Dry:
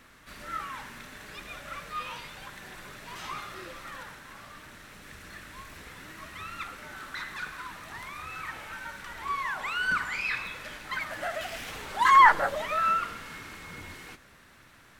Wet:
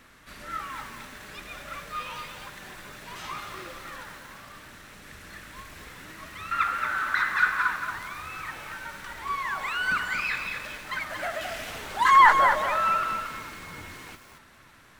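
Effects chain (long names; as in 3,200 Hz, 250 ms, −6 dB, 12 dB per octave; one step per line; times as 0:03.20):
0:06.51–0:07.76: parametric band 1,400 Hz +14.5 dB 1.3 octaves
tape delay 303 ms, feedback 72%, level −23 dB, low-pass 2,400 Hz
feedback echo at a low word length 228 ms, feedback 35%, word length 8 bits, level −6 dB
level +1 dB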